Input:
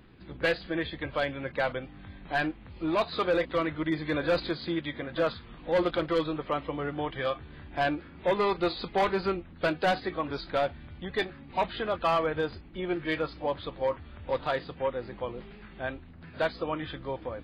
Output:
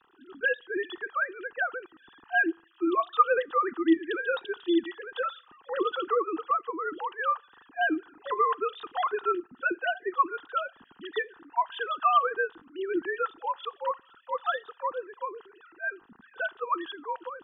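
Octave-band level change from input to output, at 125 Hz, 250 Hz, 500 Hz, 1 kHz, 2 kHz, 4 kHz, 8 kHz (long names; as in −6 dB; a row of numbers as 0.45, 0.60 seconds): below −25 dB, 0.0 dB, −3.0 dB, +4.0 dB, +4.0 dB, −4.0 dB, can't be measured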